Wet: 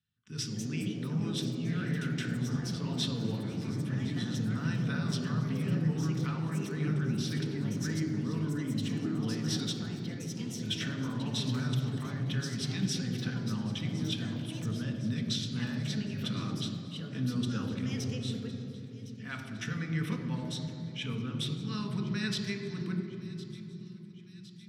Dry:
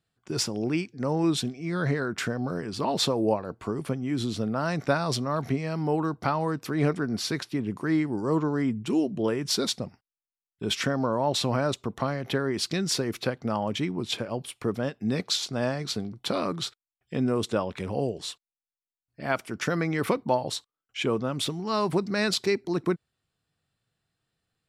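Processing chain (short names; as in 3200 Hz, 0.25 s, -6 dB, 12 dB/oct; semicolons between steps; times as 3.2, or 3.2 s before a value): passive tone stack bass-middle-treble 6-0-2; de-hum 46.41 Hz, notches 32; echoes that change speed 0.281 s, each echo +4 st, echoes 3, each echo -6 dB; thin delay 1.06 s, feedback 62%, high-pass 2700 Hz, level -16 dB; reverb RT60 3.4 s, pre-delay 3 ms, DRR 2 dB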